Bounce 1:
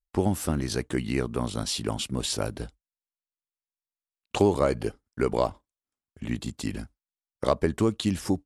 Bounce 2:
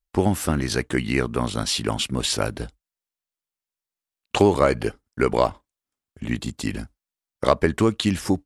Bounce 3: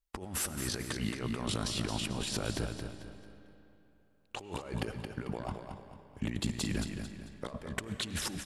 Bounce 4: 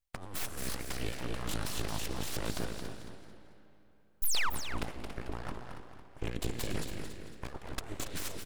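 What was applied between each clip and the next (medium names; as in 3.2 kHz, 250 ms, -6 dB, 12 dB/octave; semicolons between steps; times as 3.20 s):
dynamic bell 1.9 kHz, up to +6 dB, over -43 dBFS, Q 0.78; trim +4 dB
compressor with a negative ratio -30 dBFS, ratio -1; feedback delay 222 ms, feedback 36%, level -7 dB; algorithmic reverb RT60 3.3 s, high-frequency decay 0.7×, pre-delay 60 ms, DRR 12 dB; trim -8.5 dB
painted sound fall, 4.22–4.50 s, 410–10000 Hz -25 dBFS; full-wave rectifier; delay 281 ms -10 dB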